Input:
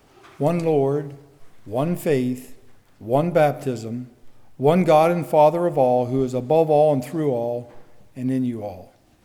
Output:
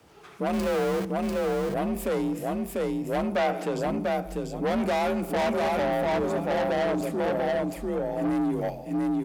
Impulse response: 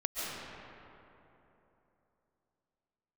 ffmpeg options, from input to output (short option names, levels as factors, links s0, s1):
-filter_complex "[0:a]asettb=1/sr,asplit=3[s0][s1][s2];[s0]atrim=end=0.534[s3];[s1]atrim=start=0.53:end=1.05,asetpts=PTS-STARTPTS,afade=t=in:d=0.004:c=qsin,afade=t=out:st=0.516:d=0.004:c=qsin,aeval=exprs='val(0)+0.5*0.0447*sgn(val(0))':c=same[s4];[s2]atrim=start=1.046[s5];[s3][s4]acrossfade=d=0.004:c1=hsin:c2=qsin[s6];[s6][s5]acrossfade=d=0.004:c1=qsin:c2=hsin,asettb=1/sr,asplit=3[s7][s8][s9];[s7]atrim=end=8.214[s10];[s8]atrim=start=8.21:end=8.7,asetpts=PTS-STARTPTS,afade=t=in:d=0.004:c=qsin,afade=t=out:st=0.486:d=0.004:c=qsin,acontrast=50[s11];[s9]atrim=start=8.696[s12];[s10][s11]acrossfade=d=0.004:c1=hsin:c2=qsin[s13];[s13][s12]acrossfade=d=0.004:c1=qsin:c2=hsin,aecho=1:1:694|1388|2082:0.708|0.113|0.0181,asoftclip=type=tanh:threshold=0.0841,afreqshift=43,asettb=1/sr,asplit=3[s14][s15][s16];[s14]atrim=end=3.364[s17];[s15]atrim=start=3.36:end=3.8,asetpts=PTS-STARTPTS,afade=t=in:d=0.004:c=qsin,afade=t=out:st=0.436:d=0.004:c=qsin,asplit=2[s18][s19];[s19]highpass=f=720:p=1,volume=3.98,asoftclip=type=tanh:threshold=0.188[s20];[s18][s20]amix=inputs=2:normalize=0,lowpass=f=3200:p=1,volume=0.501[s21];[s16]atrim=start=3.796[s22];[s17][s21]acrossfade=d=0.004:c1=hsin:c2=qsin[s23];[s23][s22]acrossfade=d=0.004:c1=qsin:c2=hsin,volume=0.841"